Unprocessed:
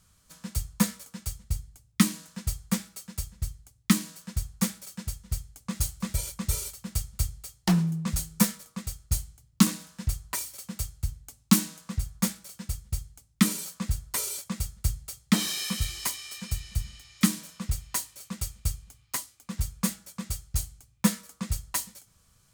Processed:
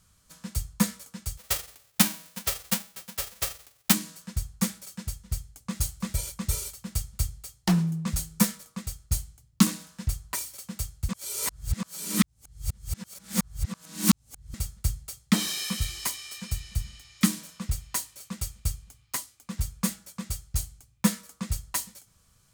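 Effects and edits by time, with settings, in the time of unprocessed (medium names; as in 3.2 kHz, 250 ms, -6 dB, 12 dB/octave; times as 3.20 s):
1.37–3.93 s: formants flattened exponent 0.1
11.09–14.54 s: reverse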